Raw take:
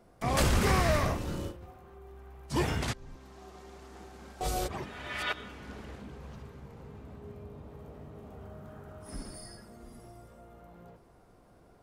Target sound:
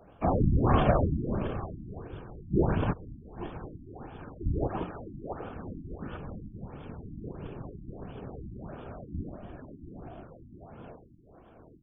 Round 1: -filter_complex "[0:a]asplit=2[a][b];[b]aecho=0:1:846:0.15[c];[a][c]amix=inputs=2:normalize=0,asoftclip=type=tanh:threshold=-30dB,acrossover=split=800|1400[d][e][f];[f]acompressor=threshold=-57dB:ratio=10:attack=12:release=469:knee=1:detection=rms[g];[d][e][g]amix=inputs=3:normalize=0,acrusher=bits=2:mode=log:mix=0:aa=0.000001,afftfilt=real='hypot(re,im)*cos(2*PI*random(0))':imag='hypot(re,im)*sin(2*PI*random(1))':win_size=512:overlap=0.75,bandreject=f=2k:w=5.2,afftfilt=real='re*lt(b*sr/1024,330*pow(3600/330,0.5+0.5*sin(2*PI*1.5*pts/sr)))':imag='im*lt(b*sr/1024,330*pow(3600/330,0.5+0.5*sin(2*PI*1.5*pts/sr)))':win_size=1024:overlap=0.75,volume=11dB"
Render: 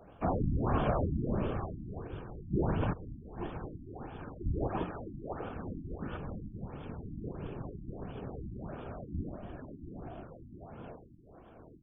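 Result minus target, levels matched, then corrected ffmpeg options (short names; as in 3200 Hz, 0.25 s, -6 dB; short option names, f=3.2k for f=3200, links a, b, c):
soft clip: distortion +12 dB
-filter_complex "[0:a]asplit=2[a][b];[b]aecho=0:1:846:0.15[c];[a][c]amix=inputs=2:normalize=0,asoftclip=type=tanh:threshold=-19dB,acrossover=split=800|1400[d][e][f];[f]acompressor=threshold=-57dB:ratio=10:attack=12:release=469:knee=1:detection=rms[g];[d][e][g]amix=inputs=3:normalize=0,acrusher=bits=2:mode=log:mix=0:aa=0.000001,afftfilt=real='hypot(re,im)*cos(2*PI*random(0))':imag='hypot(re,im)*sin(2*PI*random(1))':win_size=512:overlap=0.75,bandreject=f=2k:w=5.2,afftfilt=real='re*lt(b*sr/1024,330*pow(3600/330,0.5+0.5*sin(2*PI*1.5*pts/sr)))':imag='im*lt(b*sr/1024,330*pow(3600/330,0.5+0.5*sin(2*PI*1.5*pts/sr)))':win_size=1024:overlap=0.75,volume=11dB"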